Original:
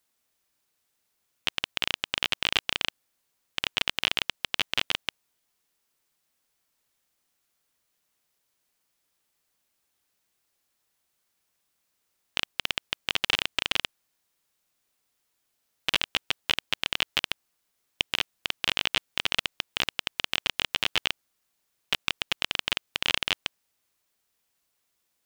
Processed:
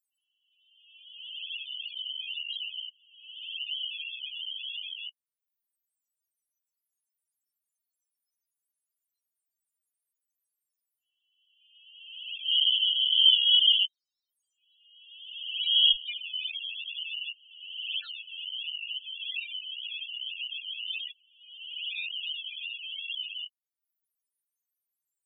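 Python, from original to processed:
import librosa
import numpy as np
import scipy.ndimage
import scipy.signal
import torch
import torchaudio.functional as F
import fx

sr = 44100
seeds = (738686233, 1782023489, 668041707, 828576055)

y = fx.spec_swells(x, sr, rise_s=1.48)
y = fx.weighting(y, sr, curve='D', at=(12.45, 15.92))
y = fx.dereverb_blind(y, sr, rt60_s=0.89)
y = fx.high_shelf(y, sr, hz=3300.0, db=11.5)
y = fx.transient(y, sr, attack_db=-8, sustain_db=3)
y = fx.env_flanger(y, sr, rest_ms=3.7, full_db=-14.0)
y = fx.spec_topn(y, sr, count=4)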